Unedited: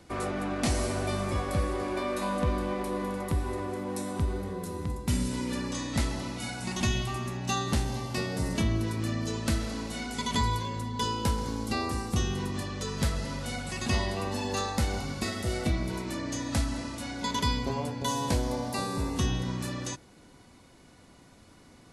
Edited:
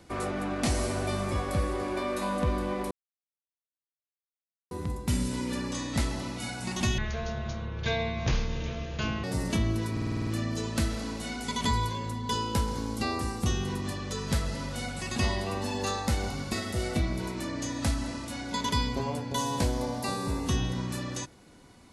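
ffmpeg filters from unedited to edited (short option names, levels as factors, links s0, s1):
-filter_complex "[0:a]asplit=12[s0][s1][s2][s3][s4][s5][s6][s7][s8][s9][s10][s11];[s0]atrim=end=2.91,asetpts=PTS-STARTPTS,afade=t=out:st=2.906:d=0.004:c=hsin[s12];[s1]atrim=start=2.91:end=4.71,asetpts=PTS-STARTPTS,volume=0[s13];[s2]atrim=start=4.71:end=6.984,asetpts=PTS-STARTPTS,afade=t=in:d=0.004:c=hsin[s14];[s3]atrim=start=6.98:end=8.29,asetpts=PTS-STARTPTS,asetrate=25578,aresample=44100,atrim=end_sample=99605,asetpts=PTS-STARTPTS[s15];[s4]atrim=start=8.286:end=9.022[s16];[s5]atrim=start=8.968:end=9.022[s17];[s6]atrim=start=8.968:end=9.022[s18];[s7]atrim=start=8.968:end=9.022[s19];[s8]atrim=start=8.968:end=9.022[s20];[s9]atrim=start=8.968:end=9.022[s21];[s10]atrim=start=8.968:end=9.022[s22];[s11]atrim=start=8.968[s23];[s12][s13][s14]concat=n=3:v=0:a=1[s24];[s24][s15]acrossfade=d=0.004:c1=hsin:c2=hsin[s25];[s25][s16]acrossfade=d=0.004:c1=hsin:c2=hsin[s26];[s26][s17]acrossfade=d=0.004:c1=hsin:c2=hsin[s27];[s27][s18]acrossfade=d=0.004:c1=hsin:c2=hsin[s28];[s28][s19]acrossfade=d=0.004:c1=hsin:c2=hsin[s29];[s29][s20]acrossfade=d=0.004:c1=hsin:c2=hsin[s30];[s30][s21]acrossfade=d=0.004:c1=hsin:c2=hsin[s31];[s31][s22]acrossfade=d=0.004:c1=hsin:c2=hsin[s32];[s32][s23]acrossfade=d=0.004:c1=hsin:c2=hsin"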